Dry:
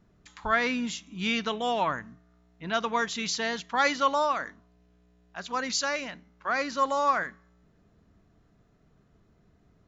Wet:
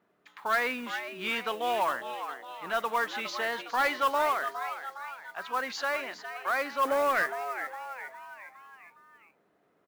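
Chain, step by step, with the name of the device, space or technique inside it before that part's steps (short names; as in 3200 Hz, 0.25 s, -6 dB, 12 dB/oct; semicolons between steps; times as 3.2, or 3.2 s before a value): 6.85–7.26 graphic EQ 125/250/500/1000/2000/4000 Hz +11/+6/+6/-8/+11/-5 dB; frequency-shifting echo 0.41 s, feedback 51%, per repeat +130 Hz, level -11 dB; carbon microphone (BPF 430–2800 Hz; soft clip -19.5 dBFS, distortion -16 dB; modulation noise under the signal 21 dB); gain +1 dB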